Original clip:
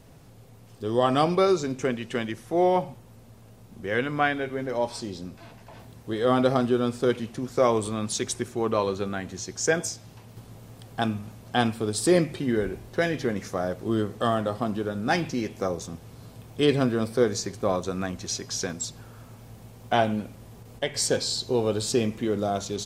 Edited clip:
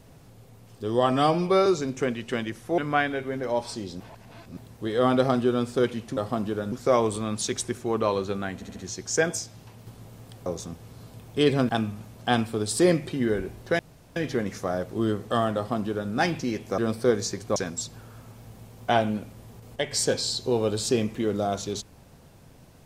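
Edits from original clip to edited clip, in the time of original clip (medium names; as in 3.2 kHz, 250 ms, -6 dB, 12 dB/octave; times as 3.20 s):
1.12–1.48 s: stretch 1.5×
2.60–4.04 s: delete
5.26–5.83 s: reverse
9.26 s: stutter 0.07 s, 4 plays
13.06 s: insert room tone 0.37 s
14.46–15.01 s: copy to 7.43 s
15.68–16.91 s: move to 10.96 s
17.69–18.59 s: delete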